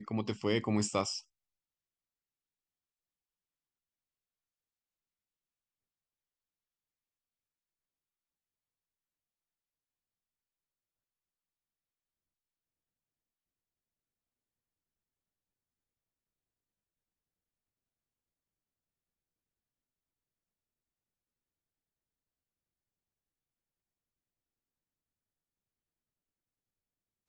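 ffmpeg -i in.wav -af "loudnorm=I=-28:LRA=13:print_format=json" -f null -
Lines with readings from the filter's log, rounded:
"input_i" : "-33.5",
"input_tp" : "-15.3",
"input_lra" : "9.1",
"input_thresh" : "-43.8",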